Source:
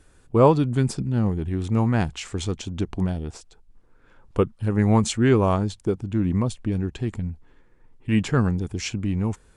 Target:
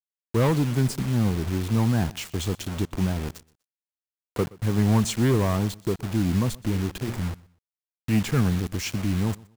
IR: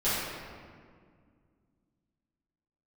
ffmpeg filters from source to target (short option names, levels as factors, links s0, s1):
-filter_complex "[0:a]asettb=1/sr,asplit=3[s0][s1][s2];[s0]atrim=end=3.284[s3];[s1]atrim=start=3.28:end=4.58,asetpts=PTS-STARTPTS,afade=t=in:d=0.004:c=qsin,afade=t=out:st=1.296:d=0.004:c=qsin,highpass=97[s4];[s2]atrim=start=4.576[s5];[s3][s4]acrossfade=d=0.004:c1=hsin:c2=qsin[s6];[s6][s5]acrossfade=d=0.004:c1=qsin:c2=hsin,asplit=3[s7][s8][s9];[s7]afade=t=out:st=6.71:d=0.02[s10];[s8]bandreject=f=60:t=h:w=6,bandreject=f=120:t=h:w=6,bandreject=f=180:t=h:w=6,bandreject=f=240:t=h:w=6,bandreject=f=300:t=h:w=6,bandreject=f=360:t=h:w=6,bandreject=f=420:t=h:w=6,bandreject=f=480:t=h:w=6,afade=t=in:st=6.71:d=0.02,afade=t=out:st=7.2:d=0.02[s11];[s9]afade=t=in:st=7.2:d=0.02[s12];[s10][s11][s12]amix=inputs=3:normalize=0,acrossover=split=190[s13][s14];[s14]asoftclip=type=tanh:threshold=0.0891[s15];[s13][s15]amix=inputs=2:normalize=0,acrusher=bits=5:mix=0:aa=0.000001,aecho=1:1:123|246:0.075|0.0195"